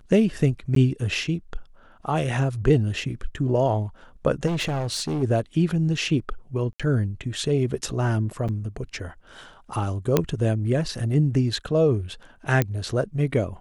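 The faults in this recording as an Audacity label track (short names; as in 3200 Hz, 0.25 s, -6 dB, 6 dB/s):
0.750000	0.760000	gap 13 ms
4.460000	5.230000	clipped -22.5 dBFS
6.730000	6.800000	gap 66 ms
8.480000	8.490000	gap 6.6 ms
10.170000	10.170000	pop -5 dBFS
12.620000	12.620000	pop -8 dBFS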